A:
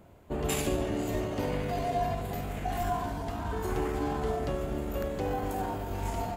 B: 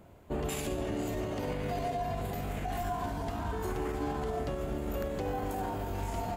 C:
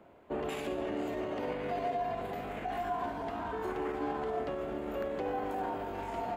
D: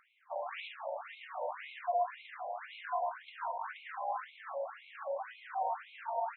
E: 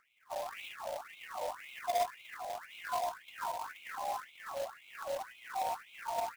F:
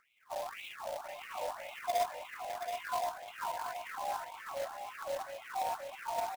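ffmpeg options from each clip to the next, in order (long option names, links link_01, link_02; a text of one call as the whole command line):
ffmpeg -i in.wav -af "alimiter=level_in=1dB:limit=-24dB:level=0:latency=1:release=95,volume=-1dB" out.wav
ffmpeg -i in.wav -filter_complex "[0:a]acrossover=split=230 3400:gain=0.178 1 0.178[link_01][link_02][link_03];[link_01][link_02][link_03]amix=inputs=3:normalize=0,volume=1dB" out.wav
ffmpeg -i in.wav -af "afftfilt=real='re*between(b*sr/1024,690*pow(3000/690,0.5+0.5*sin(2*PI*1.9*pts/sr))/1.41,690*pow(3000/690,0.5+0.5*sin(2*PI*1.9*pts/sr))*1.41)':imag='im*between(b*sr/1024,690*pow(3000/690,0.5+0.5*sin(2*PI*1.9*pts/sr))/1.41,690*pow(3000/690,0.5+0.5*sin(2*PI*1.9*pts/sr))*1.41)':win_size=1024:overlap=0.75,volume=3.5dB" out.wav
ffmpeg -i in.wav -filter_complex "[0:a]acrossover=split=760[link_01][link_02];[link_01]aeval=exprs='val(0)*(1-0.5/2+0.5/2*cos(2*PI*1.9*n/s))':channel_layout=same[link_03];[link_02]aeval=exprs='val(0)*(1-0.5/2-0.5/2*cos(2*PI*1.9*n/s))':channel_layout=same[link_04];[link_03][link_04]amix=inputs=2:normalize=0,acrusher=bits=2:mode=log:mix=0:aa=0.000001,volume=1.5dB" out.wav
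ffmpeg -i in.wav -af "aecho=1:1:727:0.422" out.wav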